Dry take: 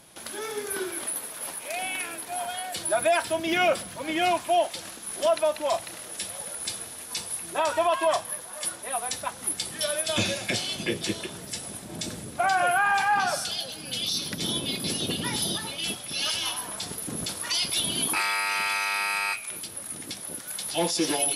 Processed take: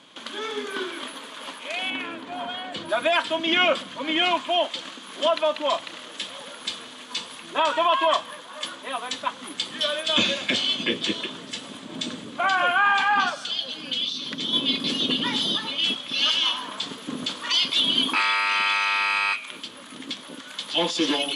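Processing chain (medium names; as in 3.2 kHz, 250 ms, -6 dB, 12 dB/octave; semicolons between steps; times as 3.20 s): 1.90–2.89 s: tilt EQ -3 dB/octave; 13.29–14.53 s: compression, threshold -31 dBFS, peak gain reduction 7 dB; cabinet simulation 230–6600 Hz, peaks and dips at 260 Hz +9 dB, 360 Hz -4 dB, 740 Hz -7 dB, 1.1 kHz +6 dB, 3.2 kHz +9 dB, 5.4 kHz -9 dB; trim +3 dB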